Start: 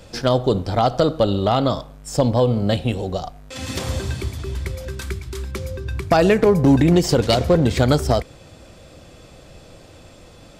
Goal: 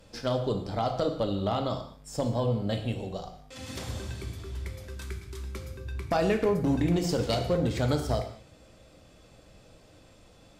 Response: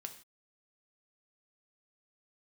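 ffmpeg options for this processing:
-filter_complex "[1:a]atrim=start_sample=2205,asetrate=33957,aresample=44100[s0];[0:a][s0]afir=irnorm=-1:irlink=0,volume=0.376"

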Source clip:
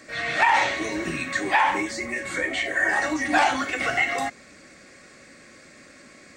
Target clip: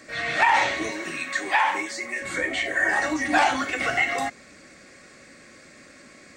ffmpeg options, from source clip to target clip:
-filter_complex "[0:a]asettb=1/sr,asplit=3[s0][s1][s2];[s0]atrim=end=0.914[s3];[s1]atrim=start=0.91:end=2.22,asetpts=PTS-STARTPTS,afade=t=in:d=0.004:c=qsin,afade=t=out:st=1.306:d=0.004:c=qsin,highpass=f=580:p=1[s4];[s2]atrim=start=2.216[s5];[s3][s4]acrossfade=d=0.004:c1=hsin:c2=qsin[s6];[s6][s5]acrossfade=d=0.004:c1=qsin:c2=hsin"

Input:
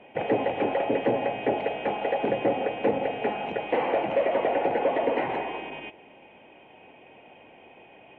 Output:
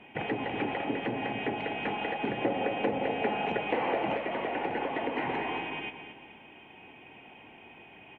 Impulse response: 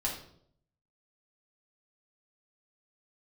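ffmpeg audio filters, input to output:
-af "aecho=1:1:225|450|675|900:0.316|0.117|0.0433|0.016,acompressor=threshold=0.0562:ratio=6,asetnsamples=n=441:p=0,asendcmd='2.38 equalizer g -5;4.16 equalizer g -11.5',equalizer=f=560:t=o:w=0.81:g=-13,volume=1.33"

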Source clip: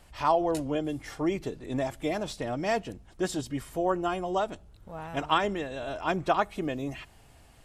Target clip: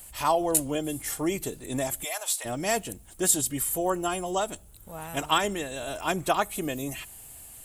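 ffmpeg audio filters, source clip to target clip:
-filter_complex "[0:a]asplit=3[s0][s1][s2];[s0]afade=t=out:st=2.03:d=0.02[s3];[s1]highpass=f=710:w=0.5412,highpass=f=710:w=1.3066,afade=t=in:st=2.03:d=0.02,afade=t=out:st=2.44:d=0.02[s4];[s2]afade=t=in:st=2.44:d=0.02[s5];[s3][s4][s5]amix=inputs=3:normalize=0,acrossover=split=2600[s6][s7];[s7]acontrast=75[s8];[s6][s8]amix=inputs=2:normalize=0,aexciter=amount=6.8:drive=5.3:freq=7400"

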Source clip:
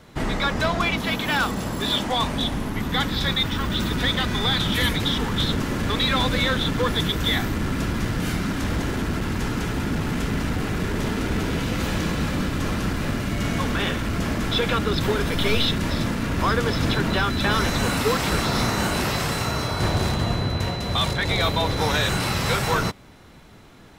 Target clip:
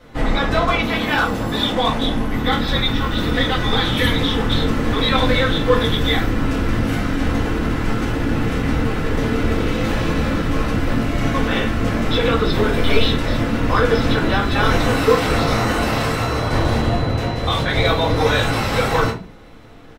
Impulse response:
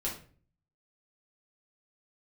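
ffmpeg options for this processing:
-filter_complex "[0:a]bass=f=250:g=-5,treble=f=4000:g=-6,atempo=1.2[s0];[1:a]atrim=start_sample=2205,asetrate=61740,aresample=44100[s1];[s0][s1]afir=irnorm=-1:irlink=0,volume=1.68"

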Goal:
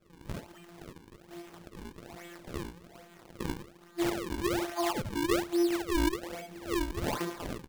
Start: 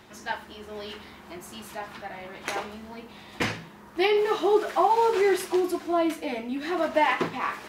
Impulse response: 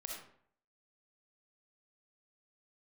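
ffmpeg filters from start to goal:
-af "afftfilt=real='hypot(re,im)*cos(PI*b)':imag='0':win_size=1024:overlap=0.75,aecho=1:1:18|67:0.631|0.708,acrusher=samples=39:mix=1:aa=0.000001:lfo=1:lforange=62.4:lforate=1.2,volume=0.473"

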